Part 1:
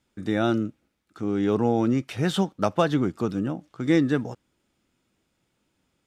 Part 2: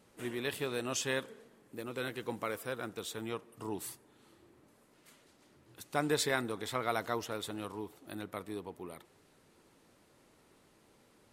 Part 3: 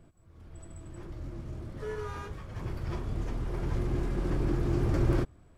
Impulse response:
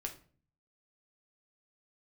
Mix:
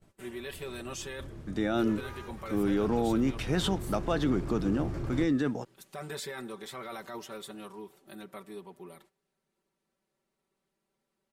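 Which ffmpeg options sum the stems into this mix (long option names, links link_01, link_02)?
-filter_complex "[0:a]highpass=150,alimiter=limit=-18.5dB:level=0:latency=1:release=13,adelay=1300,volume=-1dB[link_01];[1:a]aecho=1:1:5.2:0.98,volume=-6dB,asplit=2[link_02][link_03];[link_03]volume=-22dB[link_04];[2:a]volume=-5.5dB,asplit=2[link_05][link_06];[link_06]volume=-13dB[link_07];[link_02][link_05]amix=inputs=2:normalize=0,alimiter=level_in=6.5dB:limit=-24dB:level=0:latency=1:release=14,volume=-6.5dB,volume=0dB[link_08];[3:a]atrim=start_sample=2205[link_09];[link_04][link_07]amix=inputs=2:normalize=0[link_10];[link_10][link_09]afir=irnorm=-1:irlink=0[link_11];[link_01][link_08][link_11]amix=inputs=3:normalize=0,agate=range=-15dB:threshold=-60dB:ratio=16:detection=peak"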